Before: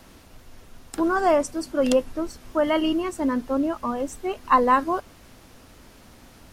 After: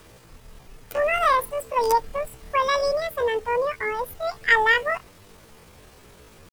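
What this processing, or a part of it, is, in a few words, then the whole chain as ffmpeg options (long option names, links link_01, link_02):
chipmunk voice: -af "asetrate=78577,aresample=44100,atempo=0.561231"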